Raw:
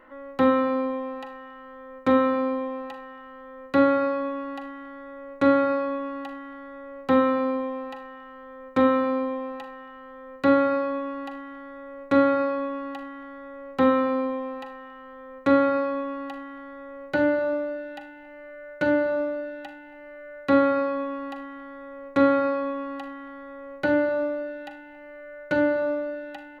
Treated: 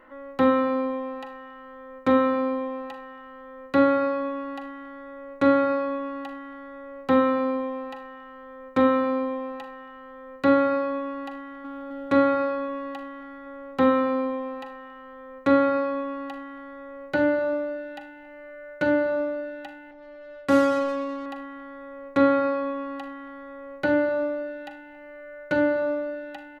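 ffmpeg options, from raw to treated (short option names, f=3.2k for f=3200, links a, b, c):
-filter_complex "[0:a]asplit=2[a][b];[b]afade=t=in:st=11.38:d=0.01,afade=t=out:st=11.9:d=0.01,aecho=0:1:260|520|780|1040|1300|1560|1820|2080|2340|2600|2860|3120:0.944061|0.708046|0.531034|0.398276|0.298707|0.22403|0.168023|0.126017|0.0945127|0.0708845|0.0531634|0.0398725[c];[a][c]amix=inputs=2:normalize=0,asettb=1/sr,asplit=3[d][e][f];[d]atrim=end=19.914[g];[e]atrim=start=19.91:end=21.26,asetpts=PTS-STARTPTS,afade=t=in:d=0.004:c=qsin,afade=t=out:st=1.346:d=0.004:c=qsin,adynamicsmooth=sensitivity=5.5:basefreq=640[h];[f]atrim=start=21.256[i];[g][h]acrossfade=d=0.004:c1=hsin:c2=qsin[j];[j][i]acrossfade=d=0.004:c1=qsin:c2=hsin"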